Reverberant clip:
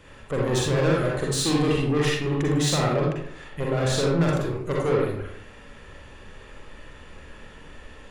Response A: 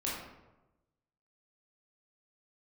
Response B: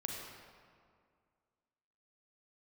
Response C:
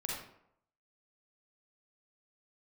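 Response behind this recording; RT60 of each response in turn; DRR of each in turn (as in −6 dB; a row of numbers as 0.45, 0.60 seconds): C; 1.0, 2.1, 0.75 seconds; −6.5, −0.5, −3.5 decibels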